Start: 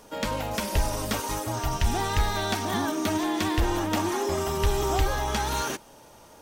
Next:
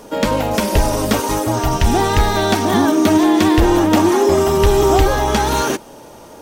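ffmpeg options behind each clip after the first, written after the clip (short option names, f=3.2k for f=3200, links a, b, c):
-af "equalizer=f=340:w=0.58:g=7,volume=8.5dB"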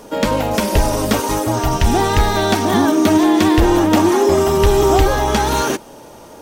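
-af anull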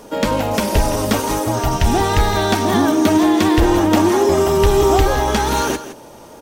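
-af "aecho=1:1:165:0.224,volume=-1dB"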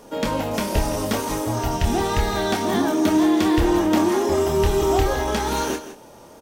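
-filter_complex "[0:a]asplit=2[a][b];[b]adelay=26,volume=-6dB[c];[a][c]amix=inputs=2:normalize=0,volume=-6.5dB"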